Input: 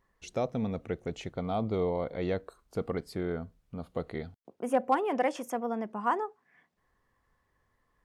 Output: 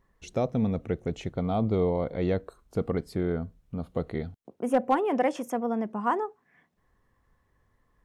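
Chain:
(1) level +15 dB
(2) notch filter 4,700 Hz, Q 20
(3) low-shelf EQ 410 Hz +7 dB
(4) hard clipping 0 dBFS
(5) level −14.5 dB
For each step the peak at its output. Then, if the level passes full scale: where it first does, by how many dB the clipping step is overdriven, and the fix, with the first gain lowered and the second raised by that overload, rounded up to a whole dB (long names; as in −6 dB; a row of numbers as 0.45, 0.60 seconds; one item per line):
−0.5, −0.5, +3.0, 0.0, −14.5 dBFS
step 3, 3.0 dB
step 1 +12 dB, step 5 −11.5 dB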